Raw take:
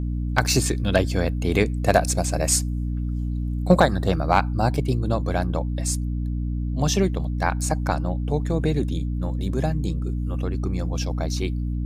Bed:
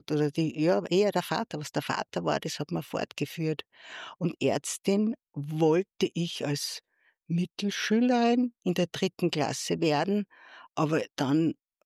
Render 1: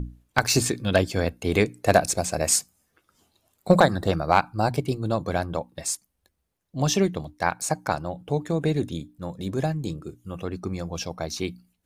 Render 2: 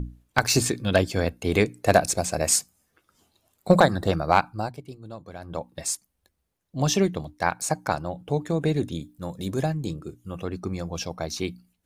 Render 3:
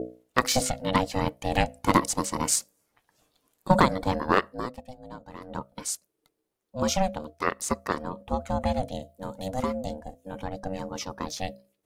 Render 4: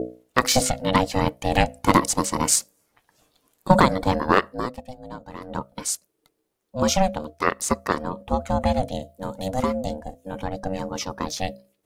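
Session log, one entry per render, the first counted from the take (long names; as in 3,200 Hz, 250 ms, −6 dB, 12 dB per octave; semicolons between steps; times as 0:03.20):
mains-hum notches 60/120/180/240/300 Hz
0:04.33–0:05.80: duck −14.5 dB, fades 0.40 s equal-power; 0:09.02–0:09.62: high-shelf EQ 5,500 Hz +8 dB
ring modulation 380 Hz
level +5 dB; brickwall limiter −2 dBFS, peak gain reduction 2.5 dB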